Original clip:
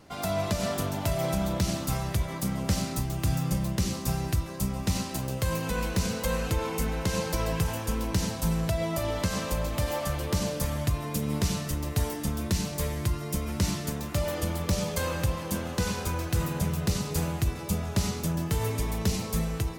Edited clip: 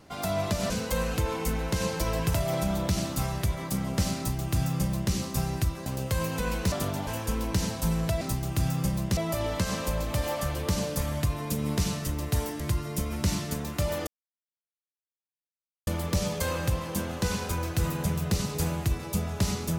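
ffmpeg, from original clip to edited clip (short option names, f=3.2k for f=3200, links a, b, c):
-filter_complex "[0:a]asplit=10[a][b][c][d][e][f][g][h][i][j];[a]atrim=end=0.702[k];[b]atrim=start=6.028:end=7.672[l];[c]atrim=start=1.048:end=4.572[m];[d]atrim=start=5.168:end=6.032[n];[e]atrim=start=0.698:end=1.052[o];[f]atrim=start=7.668:end=8.812[p];[g]atrim=start=2.878:end=3.842[q];[h]atrim=start=8.808:end=12.242[r];[i]atrim=start=12.958:end=14.43,asetpts=PTS-STARTPTS,afade=t=out:st=1.468:d=0.004:c=hsin,apad=pad_dur=1.8[s];[j]atrim=start=14.43,asetpts=PTS-STARTPTS,afade=t=in:d=0.004:c=hsin[t];[k][l]acrossfade=d=0.004:c1=hsin:c2=hsin[u];[u][m]acrossfade=d=0.004:c1=hsin:c2=hsin[v];[v][n]acrossfade=d=0.004:c1=hsin:c2=hsin[w];[w][o]acrossfade=d=0.004:c1=hsin:c2=hsin[x];[x][p]acrossfade=d=0.004:c1=hsin:c2=hsin[y];[y][q]acrossfade=d=0.004:c1=hsin:c2=hsin[z];[z][r]acrossfade=d=0.004:c1=hsin:c2=hsin[aa];[s][t]concat=n=2:v=0:a=1[ab];[aa][ab]acrossfade=d=0.004:c1=hsin:c2=hsin"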